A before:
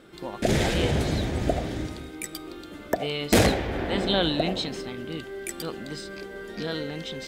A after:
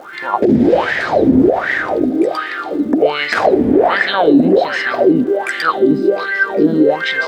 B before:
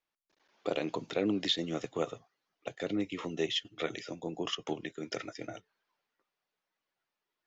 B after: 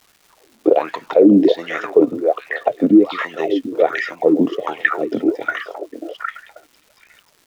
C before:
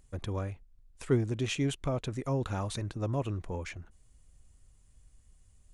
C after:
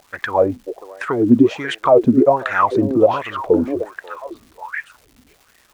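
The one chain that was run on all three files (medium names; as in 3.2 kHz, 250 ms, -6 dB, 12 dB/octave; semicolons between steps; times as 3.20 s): dynamic bell 4.8 kHz, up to +6 dB, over -48 dBFS, Q 2.4; compression 6:1, threshold -27 dBFS; on a send: repeats whose band climbs or falls 539 ms, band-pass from 530 Hz, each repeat 1.4 oct, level -3 dB; on the sum: wah-wah 1.3 Hz 240–1900 Hz, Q 8.1; crackle 470 per s -74 dBFS; loudness maximiser +34.5 dB; trim -1 dB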